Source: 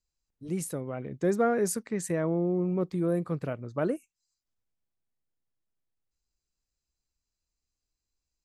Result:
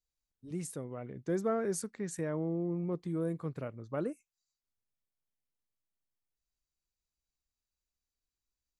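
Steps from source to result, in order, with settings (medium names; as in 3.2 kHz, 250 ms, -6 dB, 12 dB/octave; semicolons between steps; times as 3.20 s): speed mistake 25 fps video run at 24 fps; trim -6.5 dB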